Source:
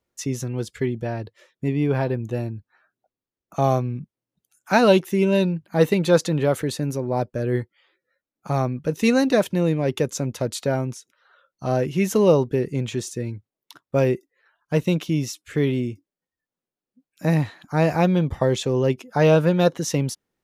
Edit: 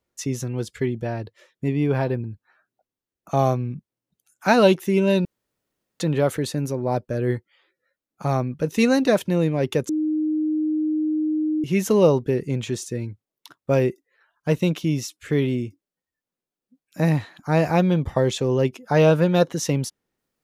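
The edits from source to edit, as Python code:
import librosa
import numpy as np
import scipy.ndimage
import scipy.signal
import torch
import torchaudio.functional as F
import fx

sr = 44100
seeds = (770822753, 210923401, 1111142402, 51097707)

y = fx.edit(x, sr, fx.cut(start_s=2.24, length_s=0.25),
    fx.room_tone_fill(start_s=5.5, length_s=0.75),
    fx.bleep(start_s=10.14, length_s=1.75, hz=309.0, db=-19.5), tone=tone)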